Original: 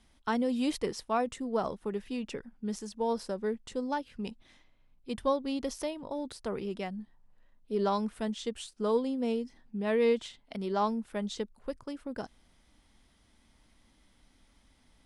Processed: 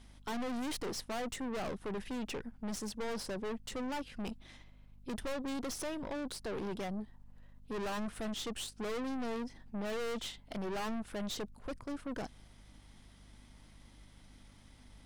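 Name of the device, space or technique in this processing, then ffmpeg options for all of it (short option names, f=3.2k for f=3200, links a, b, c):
valve amplifier with mains hum: -af "aeval=exprs='(tanh(141*val(0)+0.5)-tanh(0.5))/141':c=same,aeval=exprs='val(0)+0.000562*(sin(2*PI*50*n/s)+sin(2*PI*2*50*n/s)/2+sin(2*PI*3*50*n/s)/3+sin(2*PI*4*50*n/s)/4+sin(2*PI*5*50*n/s)/5)':c=same,volume=6.5dB"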